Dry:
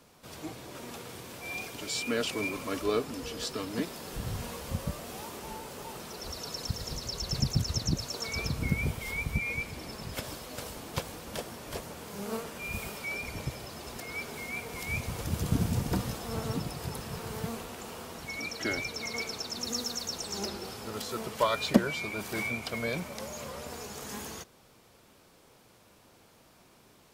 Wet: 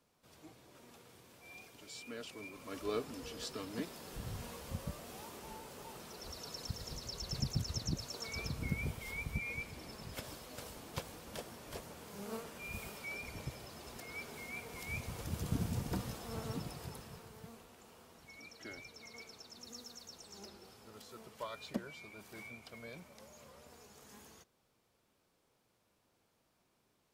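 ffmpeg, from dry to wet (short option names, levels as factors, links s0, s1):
-af "volume=0.398,afade=t=in:st=2.53:d=0.43:silence=0.398107,afade=t=out:st=16.71:d=0.61:silence=0.354813"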